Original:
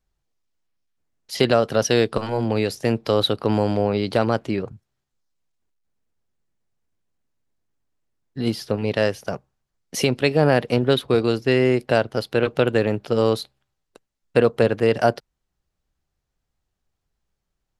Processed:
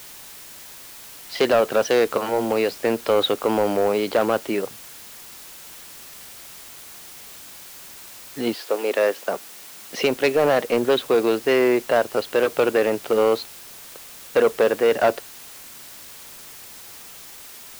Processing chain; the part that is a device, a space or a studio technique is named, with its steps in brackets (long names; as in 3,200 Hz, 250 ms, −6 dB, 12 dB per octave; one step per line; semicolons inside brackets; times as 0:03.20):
tape answering machine (band-pass filter 340–3,100 Hz; soft clipping −15.5 dBFS, distortion −13 dB; tape wow and flutter; white noise bed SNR 18 dB)
0:08.53–0:09.99: high-pass filter 390 Hz → 100 Hz 24 dB per octave
level +5 dB